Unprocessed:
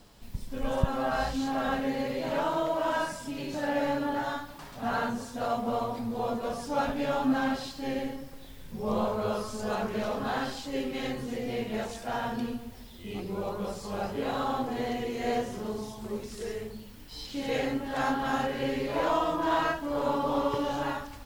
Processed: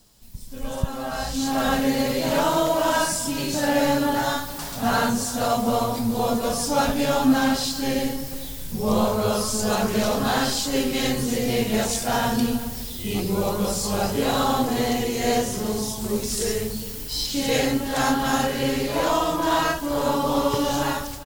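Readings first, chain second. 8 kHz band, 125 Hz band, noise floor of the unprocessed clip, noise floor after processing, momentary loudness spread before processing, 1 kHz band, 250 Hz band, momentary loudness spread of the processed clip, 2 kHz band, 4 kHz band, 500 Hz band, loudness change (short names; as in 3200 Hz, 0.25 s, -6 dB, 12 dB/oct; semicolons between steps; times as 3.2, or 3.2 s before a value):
+19.5 dB, +9.5 dB, -46 dBFS, -33 dBFS, 10 LU, +6.5 dB, +8.5 dB, 7 LU, +7.0 dB, +13.0 dB, +7.0 dB, +8.0 dB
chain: tone controls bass +4 dB, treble +14 dB; AGC gain up to 16 dB; echo 0.398 s -17.5 dB; gain -7 dB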